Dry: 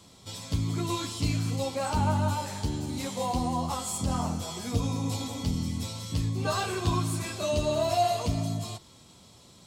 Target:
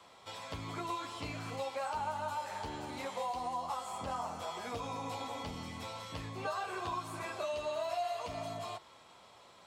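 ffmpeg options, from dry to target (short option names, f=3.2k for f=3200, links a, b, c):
-filter_complex "[0:a]acrossover=split=520 2600:gain=0.0891 1 0.141[a][b][c];[a][b][c]amix=inputs=3:normalize=0,acrossover=split=1200|3700[d][e][f];[d]acompressor=threshold=-43dB:ratio=4[g];[e]acompressor=threshold=-53dB:ratio=4[h];[f]acompressor=threshold=-57dB:ratio=4[i];[g][h][i]amix=inputs=3:normalize=0,volume=5dB"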